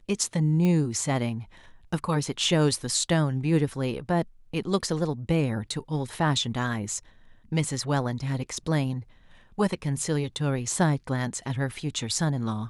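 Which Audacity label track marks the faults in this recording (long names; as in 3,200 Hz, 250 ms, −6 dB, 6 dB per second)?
0.650000	0.650000	click −16 dBFS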